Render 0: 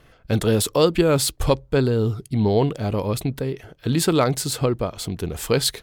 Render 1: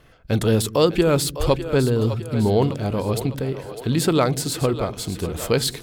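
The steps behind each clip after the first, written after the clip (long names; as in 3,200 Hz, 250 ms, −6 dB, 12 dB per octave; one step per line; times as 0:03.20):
de-essing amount 35%
on a send: echo with a time of its own for lows and highs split 310 Hz, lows 89 ms, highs 604 ms, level −11.5 dB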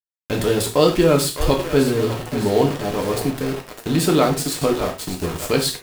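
centre clipping without the shift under −26.5 dBFS
reverb whose tail is shaped and stops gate 130 ms falling, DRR 1.5 dB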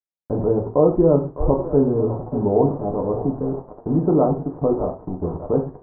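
Butterworth low-pass 970 Hz 36 dB per octave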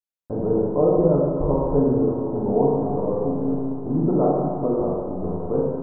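pitch vibrato 1.2 Hz 15 cents
four-comb reverb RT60 1.8 s, combs from 33 ms, DRR −2 dB
level −5.5 dB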